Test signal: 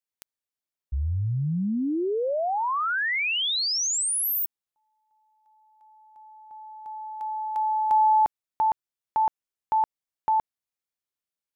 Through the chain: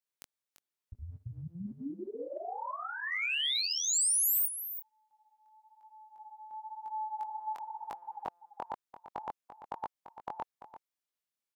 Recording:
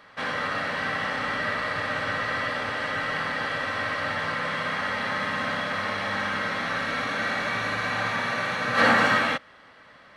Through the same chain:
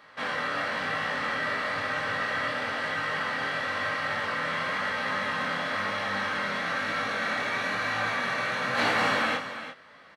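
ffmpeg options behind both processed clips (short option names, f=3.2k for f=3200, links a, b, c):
-filter_complex "[0:a]flanger=delay=18.5:depth=6.1:speed=1,afftfilt=real='re*lt(hypot(re,im),0.282)':imag='im*lt(hypot(re,im),0.282)':win_size=1024:overlap=0.75,aecho=1:1:341:0.251,asplit=2[a][b];[b]volume=31.5dB,asoftclip=hard,volume=-31.5dB,volume=-12dB[c];[a][c]amix=inputs=2:normalize=0,lowshelf=f=110:g=-9"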